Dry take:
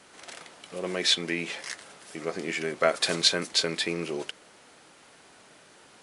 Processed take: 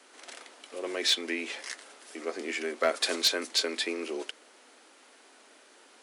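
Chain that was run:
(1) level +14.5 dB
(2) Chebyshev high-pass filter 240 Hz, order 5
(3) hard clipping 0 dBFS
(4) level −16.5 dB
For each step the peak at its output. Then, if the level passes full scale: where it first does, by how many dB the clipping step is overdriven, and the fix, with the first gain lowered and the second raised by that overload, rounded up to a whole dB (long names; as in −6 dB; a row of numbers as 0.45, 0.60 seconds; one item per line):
+8.5, +8.5, 0.0, −16.5 dBFS
step 1, 8.5 dB
step 1 +5.5 dB, step 4 −7.5 dB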